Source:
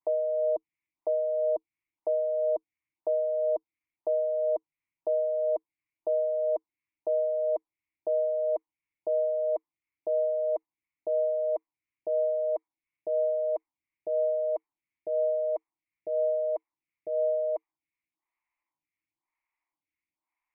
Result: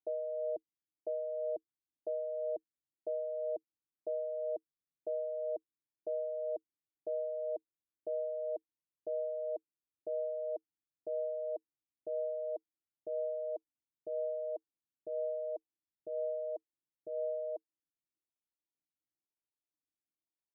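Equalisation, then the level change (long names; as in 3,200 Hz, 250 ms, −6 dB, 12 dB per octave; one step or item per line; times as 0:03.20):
Gaussian smoothing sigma 18 samples
spectral tilt +2.5 dB per octave
+2.5 dB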